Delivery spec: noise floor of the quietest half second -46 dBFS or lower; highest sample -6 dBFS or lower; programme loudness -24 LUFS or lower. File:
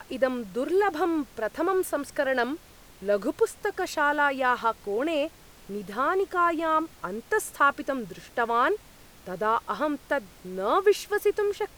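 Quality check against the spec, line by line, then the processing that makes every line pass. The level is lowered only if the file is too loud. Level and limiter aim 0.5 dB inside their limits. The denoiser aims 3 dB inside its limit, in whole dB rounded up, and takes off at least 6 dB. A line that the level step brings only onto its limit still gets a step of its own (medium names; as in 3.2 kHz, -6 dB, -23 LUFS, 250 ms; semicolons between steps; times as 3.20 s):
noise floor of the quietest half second -51 dBFS: pass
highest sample -10.0 dBFS: pass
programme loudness -27.0 LUFS: pass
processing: none needed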